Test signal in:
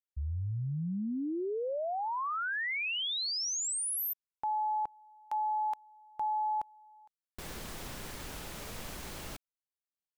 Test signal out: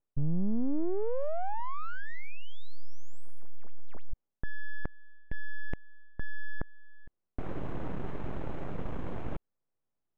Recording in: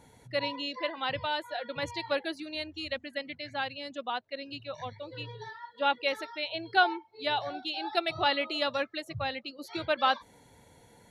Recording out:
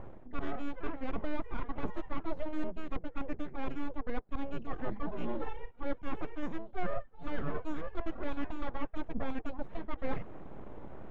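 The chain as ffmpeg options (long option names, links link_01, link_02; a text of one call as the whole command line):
ffmpeg -i in.wav -af "aeval=exprs='abs(val(0))':channel_layout=same,equalizer=frequency=4900:width=3:gain=-12.5,areverse,acompressor=threshold=-40dB:ratio=8:attack=1.6:release=524:knee=6:detection=peak,areverse,tiltshelf=frequency=900:gain=5.5,adynamicsmooth=sensitivity=4.5:basefreq=1700,volume=13dB" out.wav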